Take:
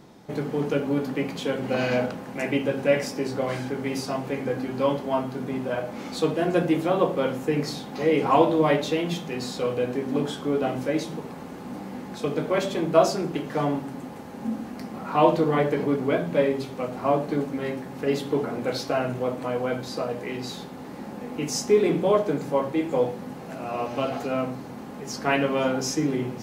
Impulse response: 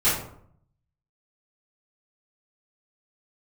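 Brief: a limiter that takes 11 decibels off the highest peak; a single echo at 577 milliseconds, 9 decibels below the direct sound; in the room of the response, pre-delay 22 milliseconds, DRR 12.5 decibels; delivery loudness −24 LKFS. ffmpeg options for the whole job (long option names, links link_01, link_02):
-filter_complex "[0:a]alimiter=limit=-16dB:level=0:latency=1,aecho=1:1:577:0.355,asplit=2[link_01][link_02];[1:a]atrim=start_sample=2205,adelay=22[link_03];[link_02][link_03]afir=irnorm=-1:irlink=0,volume=-27.5dB[link_04];[link_01][link_04]amix=inputs=2:normalize=0,volume=3.5dB"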